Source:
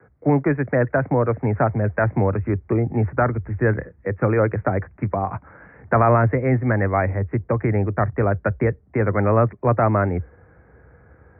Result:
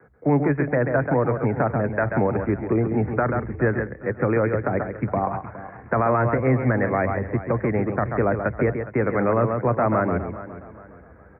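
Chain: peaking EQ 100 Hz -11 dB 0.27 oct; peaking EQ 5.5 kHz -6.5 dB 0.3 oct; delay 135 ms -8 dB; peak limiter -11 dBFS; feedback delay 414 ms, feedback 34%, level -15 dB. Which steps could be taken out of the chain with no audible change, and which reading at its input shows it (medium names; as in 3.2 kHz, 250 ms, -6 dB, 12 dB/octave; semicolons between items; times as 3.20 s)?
peaking EQ 5.5 kHz: input has nothing above 2.2 kHz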